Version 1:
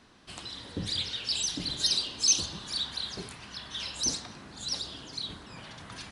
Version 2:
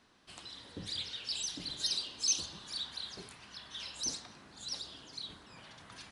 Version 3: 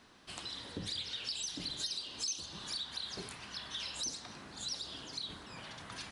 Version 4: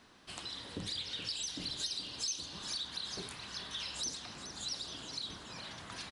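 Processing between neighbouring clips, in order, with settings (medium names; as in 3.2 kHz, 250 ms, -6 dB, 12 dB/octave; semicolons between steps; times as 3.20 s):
bass shelf 270 Hz -5 dB; trim -7 dB
compression 4:1, threshold -43 dBFS, peak gain reduction 14.5 dB; trim +5.5 dB
feedback delay 423 ms, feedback 60%, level -11 dB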